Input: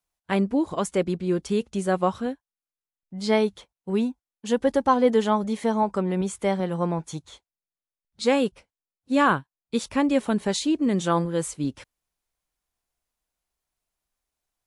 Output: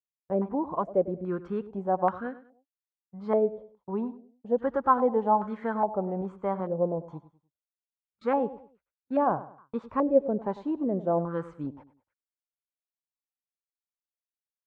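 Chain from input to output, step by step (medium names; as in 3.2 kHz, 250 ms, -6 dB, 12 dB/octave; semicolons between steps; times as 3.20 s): gate -40 dBFS, range -26 dB; on a send: feedback delay 100 ms, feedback 32%, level -15.5 dB; on the sum: step-sequenced low-pass 2.4 Hz 550–1500 Hz; trim -8 dB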